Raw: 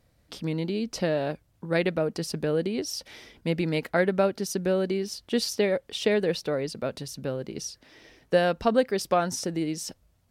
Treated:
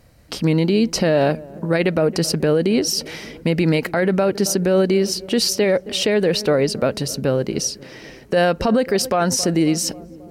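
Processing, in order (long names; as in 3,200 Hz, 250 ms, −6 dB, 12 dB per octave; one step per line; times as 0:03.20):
notch filter 3,500 Hz, Q 10
on a send: feedback echo with a low-pass in the loop 269 ms, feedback 73%, low-pass 840 Hz, level −22 dB
on the sum: boost into a limiter +21 dB
level −8 dB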